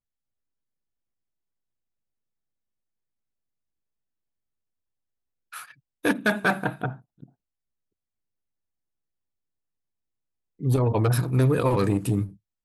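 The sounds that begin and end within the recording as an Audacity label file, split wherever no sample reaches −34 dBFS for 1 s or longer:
5.540000	7.240000	sound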